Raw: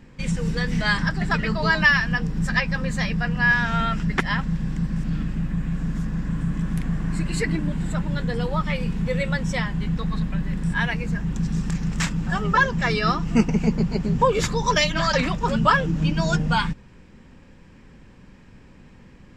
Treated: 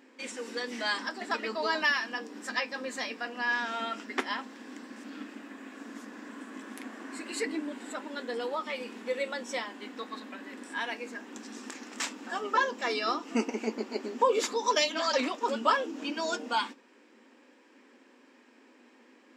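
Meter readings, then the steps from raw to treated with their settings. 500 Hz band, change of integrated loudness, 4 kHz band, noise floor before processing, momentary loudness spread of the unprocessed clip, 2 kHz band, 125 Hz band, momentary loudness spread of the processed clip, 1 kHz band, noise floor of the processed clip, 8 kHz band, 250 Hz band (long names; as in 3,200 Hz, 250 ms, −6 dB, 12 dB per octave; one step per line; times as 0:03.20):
−4.5 dB, −9.0 dB, −5.0 dB, −48 dBFS, 8 LU, −10.0 dB, below −35 dB, 17 LU, −6.0 dB, −60 dBFS, −4.5 dB, −14.0 dB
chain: linear-phase brick-wall high-pass 230 Hz
dynamic equaliser 1,700 Hz, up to −6 dB, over −35 dBFS, Q 1.6
flanger 0.13 Hz, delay 7 ms, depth 5.8 ms, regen −71%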